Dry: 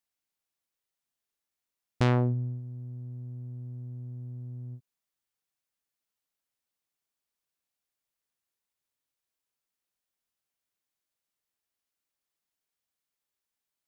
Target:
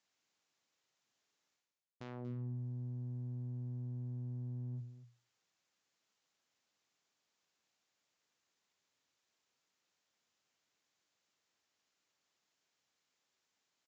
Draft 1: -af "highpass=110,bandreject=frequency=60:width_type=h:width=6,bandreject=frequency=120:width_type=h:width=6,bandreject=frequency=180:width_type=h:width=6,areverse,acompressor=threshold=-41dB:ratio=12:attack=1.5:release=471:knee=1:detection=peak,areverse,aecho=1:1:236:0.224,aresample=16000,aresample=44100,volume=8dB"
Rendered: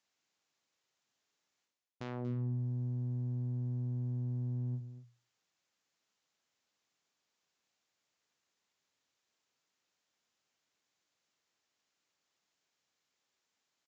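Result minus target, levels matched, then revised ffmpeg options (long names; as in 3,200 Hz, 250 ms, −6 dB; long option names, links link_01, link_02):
downward compressor: peak gain reduction −6 dB
-af "highpass=110,bandreject=frequency=60:width_type=h:width=6,bandreject=frequency=120:width_type=h:width=6,bandreject=frequency=180:width_type=h:width=6,areverse,acompressor=threshold=-47.5dB:ratio=12:attack=1.5:release=471:knee=1:detection=peak,areverse,aecho=1:1:236:0.224,aresample=16000,aresample=44100,volume=8dB"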